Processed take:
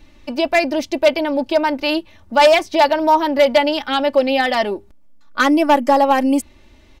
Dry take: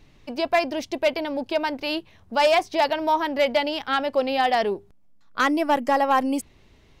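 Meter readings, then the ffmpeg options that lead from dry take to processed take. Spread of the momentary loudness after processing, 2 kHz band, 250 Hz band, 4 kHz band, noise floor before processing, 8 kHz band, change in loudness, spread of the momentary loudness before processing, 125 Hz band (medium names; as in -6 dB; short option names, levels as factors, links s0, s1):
8 LU, +6.0 dB, +8.5 dB, +6.0 dB, -54 dBFS, +7.0 dB, +7.0 dB, 9 LU, no reading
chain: -filter_complex "[0:a]aecho=1:1:3.4:0.67,acrossover=split=4700[s0][s1];[s0]volume=3.35,asoftclip=hard,volume=0.299[s2];[s2][s1]amix=inputs=2:normalize=0,volume=1.68"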